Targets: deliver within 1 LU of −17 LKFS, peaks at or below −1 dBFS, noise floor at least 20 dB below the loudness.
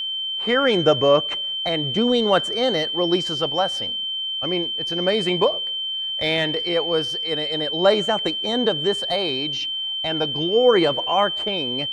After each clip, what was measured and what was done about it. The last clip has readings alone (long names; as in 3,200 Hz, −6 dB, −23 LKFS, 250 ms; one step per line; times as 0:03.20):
interfering tone 3,100 Hz; level of the tone −24 dBFS; integrated loudness −20.5 LKFS; sample peak −4.5 dBFS; target loudness −17.0 LKFS
→ notch filter 3,100 Hz, Q 30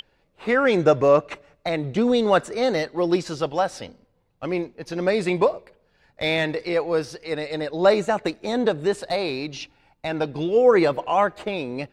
interfering tone none found; integrated loudness −22.5 LKFS; sample peak −5.5 dBFS; target loudness −17.0 LKFS
→ level +5.5 dB
brickwall limiter −1 dBFS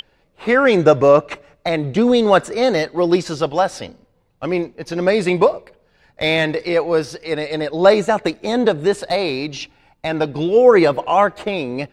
integrated loudness −17.0 LKFS; sample peak −1.0 dBFS; background noise floor −60 dBFS